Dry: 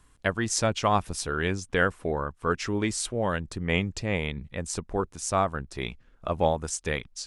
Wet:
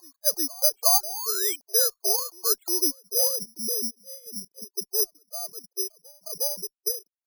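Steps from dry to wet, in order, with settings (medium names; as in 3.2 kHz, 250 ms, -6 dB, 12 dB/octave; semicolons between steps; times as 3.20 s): formants replaced by sine waves; spectral noise reduction 15 dB; upward compressor, threshold -46 dBFS; reverse echo 361 ms -23 dB; low-pass sweep 780 Hz -> 370 Hz, 2.65–3.89 s; Chebyshev shaper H 5 -43 dB, 7 -44 dB, 8 -39 dB, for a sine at -9 dBFS; painted sound rise, 1.03–1.56 s, 580–2500 Hz -32 dBFS; careless resampling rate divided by 8×, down filtered, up zero stuff; trim -9.5 dB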